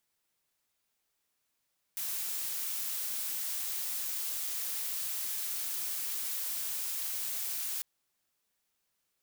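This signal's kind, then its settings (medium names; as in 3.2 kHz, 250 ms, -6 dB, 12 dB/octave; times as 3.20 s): noise blue, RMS -35.5 dBFS 5.85 s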